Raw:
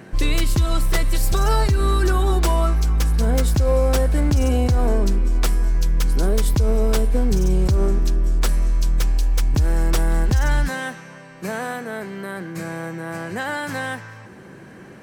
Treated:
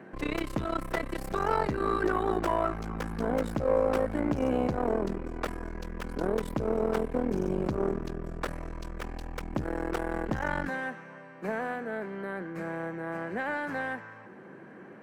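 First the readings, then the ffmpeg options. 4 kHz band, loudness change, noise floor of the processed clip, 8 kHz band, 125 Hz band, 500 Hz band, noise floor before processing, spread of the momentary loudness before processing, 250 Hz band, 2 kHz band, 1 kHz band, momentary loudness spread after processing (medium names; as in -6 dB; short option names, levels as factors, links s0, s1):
-16.0 dB, -10.5 dB, -49 dBFS, -21.5 dB, -17.5 dB, -4.0 dB, -42 dBFS, 11 LU, -5.5 dB, -6.0 dB, -4.0 dB, 12 LU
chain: -filter_complex "[0:a]aeval=exprs='(tanh(5.62*val(0)+0.75)-tanh(0.75))/5.62':c=same,acrossover=split=170 2300:gain=0.112 1 0.126[s0][s1][s2];[s0][s1][s2]amix=inputs=3:normalize=0"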